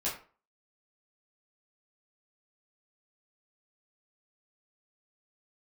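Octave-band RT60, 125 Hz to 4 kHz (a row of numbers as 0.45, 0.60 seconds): 0.35, 0.40, 0.40, 0.40, 0.35, 0.25 seconds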